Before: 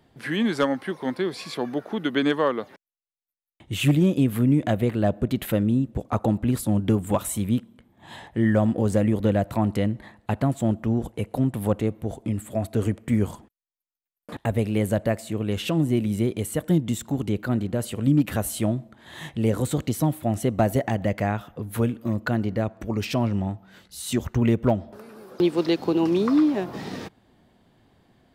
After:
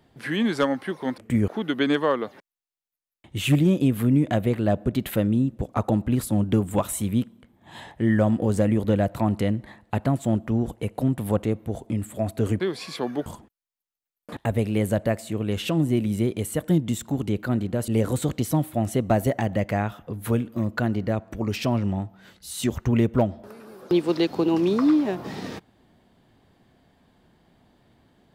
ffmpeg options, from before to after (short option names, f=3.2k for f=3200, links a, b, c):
-filter_complex "[0:a]asplit=6[a][b][c][d][e][f];[a]atrim=end=1.182[g];[b]atrim=start=12.958:end=13.262[h];[c]atrim=start=1.838:end=12.962[i];[d]atrim=start=1.178:end=1.842[j];[e]atrim=start=13.258:end=17.882[k];[f]atrim=start=19.368[l];[g][h]acrossfade=d=0.004:c1=hsin:c2=hsin[m];[m][i]acrossfade=d=0.004:c1=hsin:c2=hsin[n];[n][j]acrossfade=d=0.004:c1=hsin:c2=hsin[o];[o][k]acrossfade=d=0.004:c1=hsin:c2=hsin[p];[p][l]acrossfade=d=0.004:c1=hsin:c2=hsin"